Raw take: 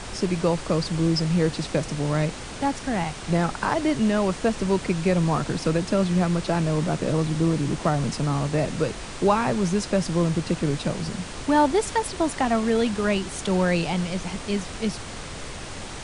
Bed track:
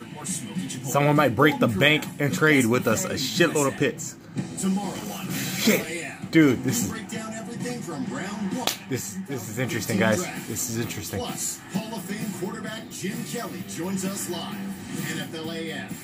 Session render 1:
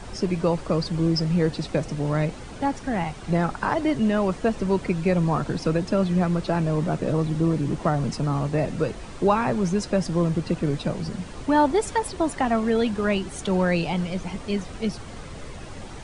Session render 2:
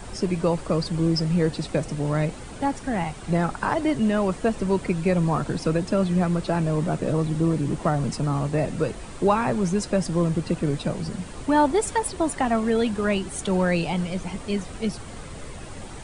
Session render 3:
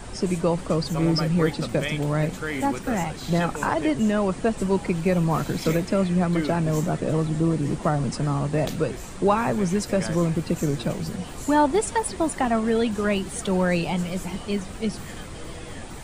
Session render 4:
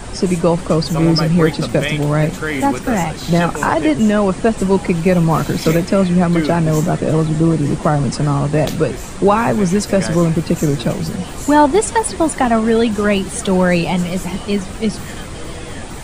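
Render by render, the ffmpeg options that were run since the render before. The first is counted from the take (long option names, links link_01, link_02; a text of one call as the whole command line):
ffmpeg -i in.wav -af "afftdn=noise_reduction=9:noise_floor=-36" out.wav
ffmpeg -i in.wav -af "aexciter=amount=2:drive=5.1:freq=7700,aeval=exprs='0.473*(cos(1*acos(clip(val(0)/0.473,-1,1)))-cos(1*PI/2))+0.0075*(cos(4*acos(clip(val(0)/0.473,-1,1)))-cos(4*PI/2))':channel_layout=same" out.wav
ffmpeg -i in.wav -i bed.wav -filter_complex "[1:a]volume=-11.5dB[link_01];[0:a][link_01]amix=inputs=2:normalize=0" out.wav
ffmpeg -i in.wav -af "volume=8.5dB,alimiter=limit=-1dB:level=0:latency=1" out.wav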